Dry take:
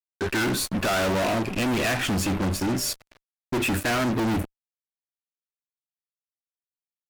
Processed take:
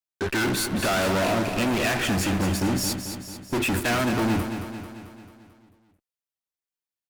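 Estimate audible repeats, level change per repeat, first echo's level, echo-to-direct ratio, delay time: 6, -5.0 dB, -8.5 dB, -7.0 dB, 221 ms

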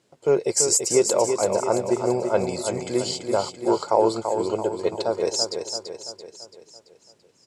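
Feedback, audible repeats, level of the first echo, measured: 51%, 5, -6.5 dB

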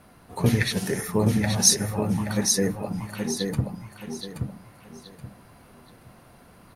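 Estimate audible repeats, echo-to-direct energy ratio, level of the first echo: 3, -4.5 dB, -5.0 dB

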